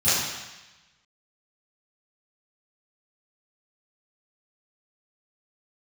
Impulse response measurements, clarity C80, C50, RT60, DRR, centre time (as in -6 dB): 1.0 dB, -2.0 dB, 1.1 s, -18.0 dB, 98 ms